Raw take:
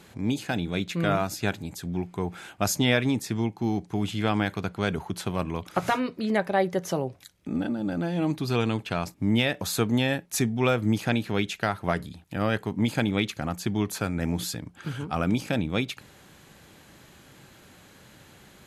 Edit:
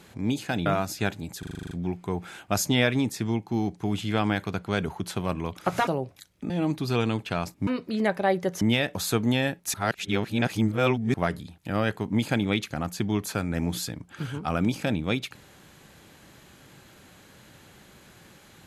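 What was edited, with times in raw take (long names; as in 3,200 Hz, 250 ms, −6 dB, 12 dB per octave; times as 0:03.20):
0:00.66–0:01.08: remove
0:01.81: stutter 0.04 s, 9 plays
0:05.97–0:06.91: move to 0:09.27
0:07.54–0:08.10: remove
0:10.40–0:11.80: reverse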